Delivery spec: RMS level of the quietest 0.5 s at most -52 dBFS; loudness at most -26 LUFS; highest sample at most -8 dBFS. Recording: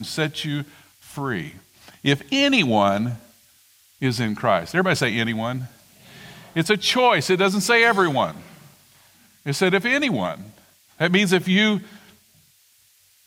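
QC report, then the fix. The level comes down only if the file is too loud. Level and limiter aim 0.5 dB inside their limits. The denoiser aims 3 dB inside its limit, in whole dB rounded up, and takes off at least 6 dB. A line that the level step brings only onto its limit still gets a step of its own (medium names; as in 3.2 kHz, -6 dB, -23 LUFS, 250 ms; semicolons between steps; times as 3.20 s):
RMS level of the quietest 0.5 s -58 dBFS: pass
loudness -20.5 LUFS: fail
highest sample -4.5 dBFS: fail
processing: trim -6 dB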